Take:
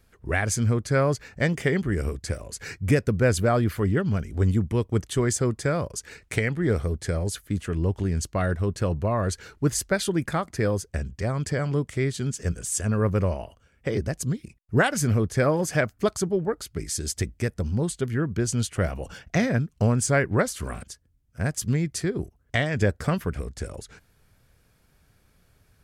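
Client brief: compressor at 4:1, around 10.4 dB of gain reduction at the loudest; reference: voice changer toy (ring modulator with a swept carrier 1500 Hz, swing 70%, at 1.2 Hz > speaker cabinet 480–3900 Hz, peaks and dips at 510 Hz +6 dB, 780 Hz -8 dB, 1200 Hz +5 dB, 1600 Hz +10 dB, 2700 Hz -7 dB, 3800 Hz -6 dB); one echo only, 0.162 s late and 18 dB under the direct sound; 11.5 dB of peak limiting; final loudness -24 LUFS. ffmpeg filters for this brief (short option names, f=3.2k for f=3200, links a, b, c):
-af "acompressor=threshold=-29dB:ratio=4,alimiter=level_in=1.5dB:limit=-24dB:level=0:latency=1,volume=-1.5dB,aecho=1:1:162:0.126,aeval=exprs='val(0)*sin(2*PI*1500*n/s+1500*0.7/1.2*sin(2*PI*1.2*n/s))':c=same,highpass=480,equalizer=f=510:t=q:w=4:g=6,equalizer=f=780:t=q:w=4:g=-8,equalizer=f=1.2k:t=q:w=4:g=5,equalizer=f=1.6k:t=q:w=4:g=10,equalizer=f=2.7k:t=q:w=4:g=-7,equalizer=f=3.8k:t=q:w=4:g=-6,lowpass=f=3.9k:w=0.5412,lowpass=f=3.9k:w=1.3066,volume=10dB"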